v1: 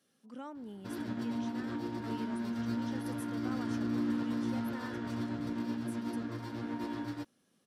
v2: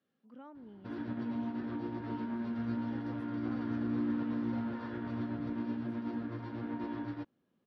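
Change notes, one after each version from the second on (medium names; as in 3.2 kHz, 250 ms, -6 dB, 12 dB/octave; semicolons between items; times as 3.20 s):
speech -5.5 dB; master: add distance through air 310 m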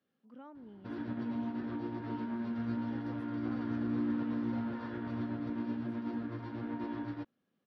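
second sound -7.5 dB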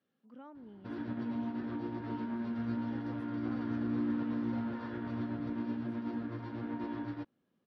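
second sound +6.0 dB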